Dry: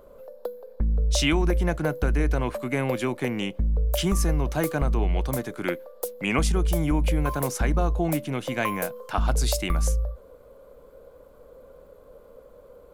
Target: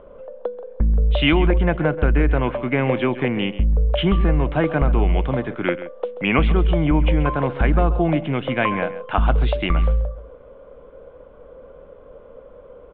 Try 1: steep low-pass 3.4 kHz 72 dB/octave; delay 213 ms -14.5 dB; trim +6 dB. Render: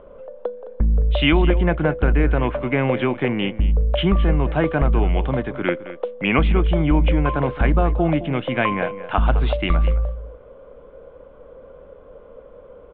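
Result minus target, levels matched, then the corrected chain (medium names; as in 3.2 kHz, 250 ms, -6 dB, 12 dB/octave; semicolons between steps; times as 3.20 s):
echo 79 ms late
steep low-pass 3.4 kHz 72 dB/octave; delay 134 ms -14.5 dB; trim +6 dB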